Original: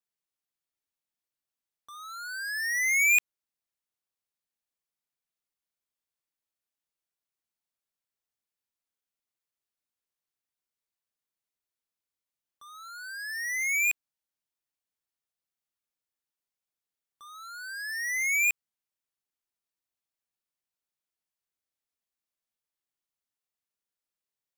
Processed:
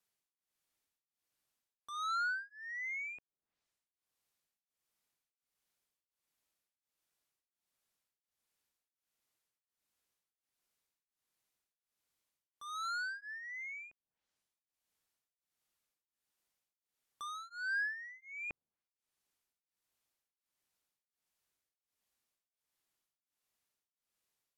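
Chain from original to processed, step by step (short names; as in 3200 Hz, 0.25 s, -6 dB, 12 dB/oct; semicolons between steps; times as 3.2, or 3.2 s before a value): treble ducked by the level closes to 660 Hz, closed at -33.5 dBFS; beating tremolo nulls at 1.4 Hz; gain +6.5 dB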